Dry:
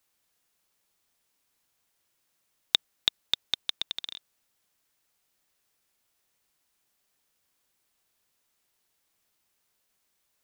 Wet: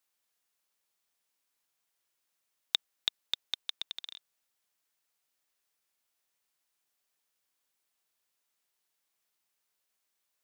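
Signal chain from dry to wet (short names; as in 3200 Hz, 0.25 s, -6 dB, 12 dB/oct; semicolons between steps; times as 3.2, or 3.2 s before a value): low shelf 290 Hz -9.5 dB; gain -6 dB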